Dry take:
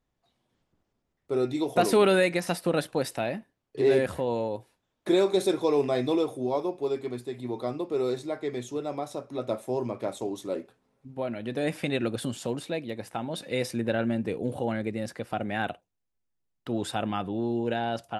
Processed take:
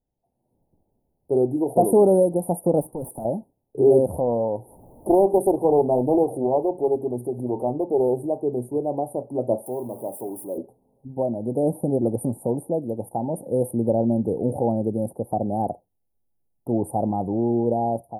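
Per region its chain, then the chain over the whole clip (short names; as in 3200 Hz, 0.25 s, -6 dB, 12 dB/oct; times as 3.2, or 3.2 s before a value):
2.81–3.25 passive tone stack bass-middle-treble 6-0-2 + negative-ratio compressor -50 dBFS, ratio -0.5 + overdrive pedal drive 36 dB, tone 2800 Hz, clips at -23.5 dBFS
4.14–8.3 upward compressor, threshold -31 dBFS + Doppler distortion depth 0.47 ms
9.66–10.58 zero-crossing step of -36.5 dBFS + HPF 420 Hz 6 dB/oct + bell 580 Hz -6.5 dB 2.5 oct
whole clip: AGC gain up to 10 dB; Chebyshev band-stop 880–9500 Hz, order 5; band shelf 3000 Hz +12.5 dB; gain -2 dB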